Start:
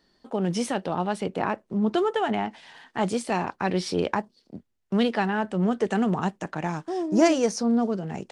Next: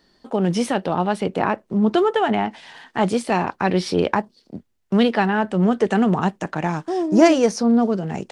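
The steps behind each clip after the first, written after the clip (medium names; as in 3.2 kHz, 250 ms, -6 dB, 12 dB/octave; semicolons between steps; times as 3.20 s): dynamic bell 7.3 kHz, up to -5 dB, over -49 dBFS, Q 1.1; trim +6 dB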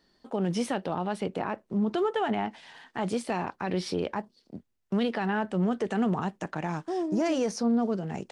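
peak limiter -11.5 dBFS, peak gain reduction 9.5 dB; trim -7.5 dB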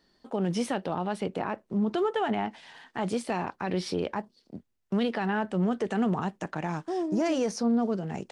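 no audible change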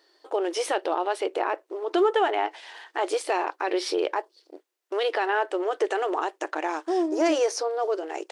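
brick-wall FIR high-pass 300 Hz; trim +6 dB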